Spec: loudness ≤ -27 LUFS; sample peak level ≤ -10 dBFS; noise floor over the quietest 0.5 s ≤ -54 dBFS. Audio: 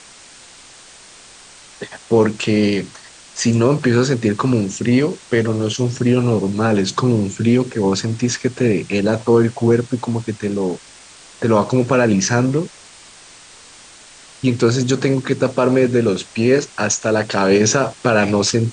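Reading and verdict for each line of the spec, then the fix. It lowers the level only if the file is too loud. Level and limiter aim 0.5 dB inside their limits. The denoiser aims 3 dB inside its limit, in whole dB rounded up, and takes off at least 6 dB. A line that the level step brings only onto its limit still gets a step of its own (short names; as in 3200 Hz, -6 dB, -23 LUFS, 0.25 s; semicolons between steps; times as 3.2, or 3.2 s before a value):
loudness -17.0 LUFS: fail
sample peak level -4.0 dBFS: fail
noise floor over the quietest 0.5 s -43 dBFS: fail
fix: denoiser 6 dB, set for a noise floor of -43 dBFS; gain -10.5 dB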